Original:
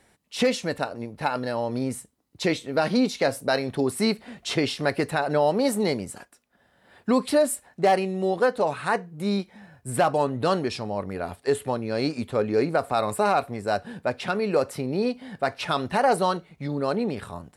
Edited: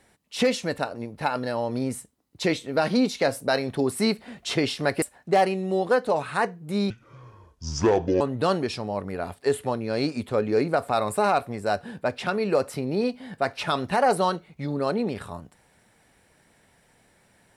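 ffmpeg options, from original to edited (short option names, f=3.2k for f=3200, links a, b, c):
-filter_complex "[0:a]asplit=4[a][b][c][d];[a]atrim=end=5.022[e];[b]atrim=start=7.528:end=9.414[f];[c]atrim=start=9.41:end=10.22,asetpts=PTS-STARTPTS,asetrate=27342,aresample=44100[g];[d]atrim=start=10.216[h];[e][f]acrossfade=d=0.004:c1=hsin:c2=hsin[i];[i][g]acrossfade=d=0.004:c1=hsin:c2=hsin[j];[j][h]acrossfade=d=0.004:c1=hsin:c2=hsin"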